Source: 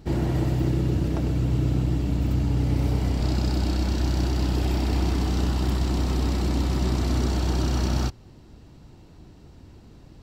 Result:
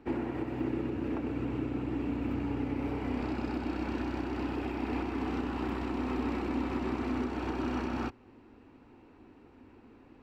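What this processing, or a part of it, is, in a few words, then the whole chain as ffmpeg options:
DJ mixer with the lows and highs turned down: -filter_complex "[0:a]acrossover=split=300 2200:gain=0.141 1 0.0891[link_01][link_02][link_03];[link_01][link_02][link_03]amix=inputs=3:normalize=0,alimiter=level_in=1dB:limit=-24dB:level=0:latency=1:release=239,volume=-1dB,equalizer=frequency=100:width_type=o:width=0.33:gain=4,equalizer=frequency=160:width_type=o:width=0.33:gain=-6,equalizer=frequency=250:width_type=o:width=0.33:gain=9,equalizer=frequency=630:width_type=o:width=0.33:gain=-8,equalizer=frequency=2500:width_type=o:width=0.33:gain=8"

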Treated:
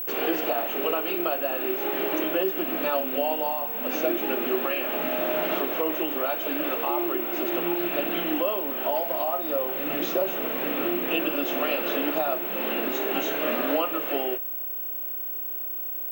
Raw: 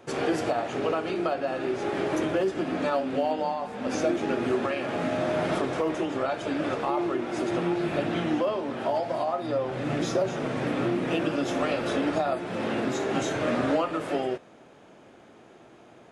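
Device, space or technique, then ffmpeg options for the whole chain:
old television with a line whistle: -af "lowpass=7300,highpass=frequency=220:width=0.5412,highpass=frequency=220:width=1.3066,equalizer=frequency=240:width_type=q:width=4:gain=-4,equalizer=frequency=2800:width_type=q:width=4:gain=9,equalizer=frequency=5100:width_type=q:width=4:gain=-6,lowpass=frequency=6900:width=0.5412,lowpass=frequency=6900:width=1.3066,aeval=exprs='val(0)+0.0355*sin(2*PI*15734*n/s)':channel_layout=same"

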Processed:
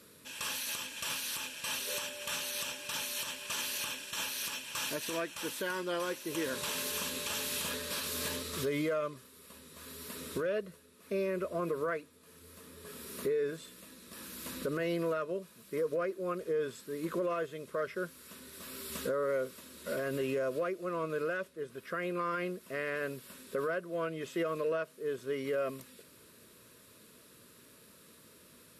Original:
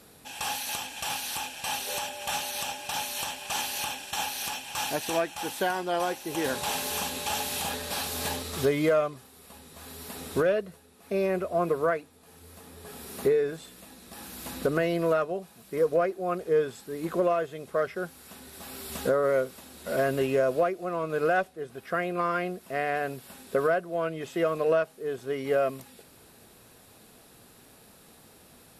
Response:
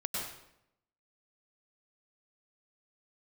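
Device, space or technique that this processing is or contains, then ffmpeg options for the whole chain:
PA system with an anti-feedback notch: -af "highpass=frequency=120:poles=1,asuperstop=centerf=770:order=4:qfactor=2.5,alimiter=limit=-22.5dB:level=0:latency=1:release=65,volume=-3dB"

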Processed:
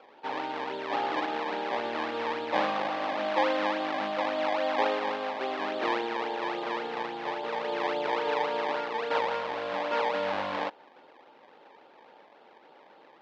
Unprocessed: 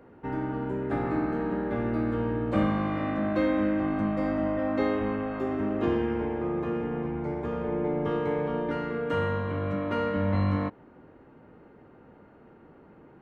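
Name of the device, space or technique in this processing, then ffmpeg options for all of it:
circuit-bent sampling toy: -af "acrusher=samples=22:mix=1:aa=0.000001:lfo=1:lforange=22:lforate=3.6,highpass=520,equalizer=frequency=560:width_type=q:width=4:gain=5,equalizer=frequency=850:width_type=q:width=4:gain=9,equalizer=frequency=1700:width_type=q:width=4:gain=3,lowpass=frequency=4000:width=0.5412,lowpass=frequency=4000:width=1.3066"

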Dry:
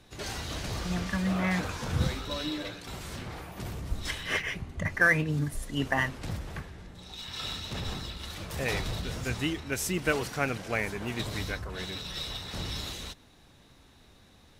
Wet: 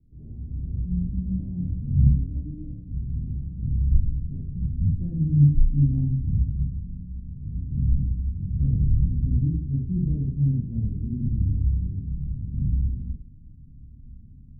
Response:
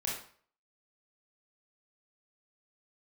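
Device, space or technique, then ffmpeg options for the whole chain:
next room: -filter_complex "[0:a]lowpass=frequency=260:width=0.5412,lowpass=frequency=260:width=1.3066[link_01];[1:a]atrim=start_sample=2205[link_02];[link_01][link_02]afir=irnorm=-1:irlink=0,asubboost=boost=5:cutoff=210,volume=-2dB"

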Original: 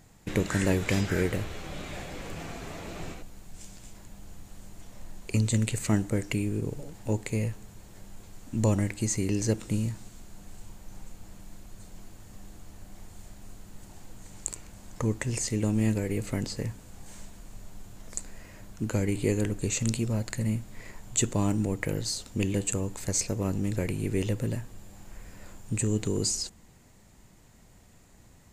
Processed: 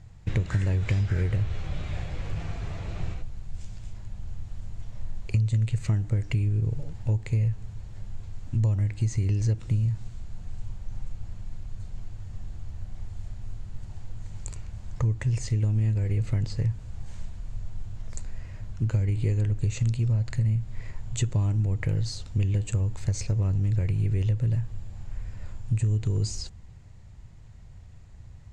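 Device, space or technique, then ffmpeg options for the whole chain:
jukebox: -af "lowpass=5400,lowshelf=frequency=160:width_type=q:width=1.5:gain=12.5,acompressor=threshold=-19dB:ratio=6,volume=-2dB"

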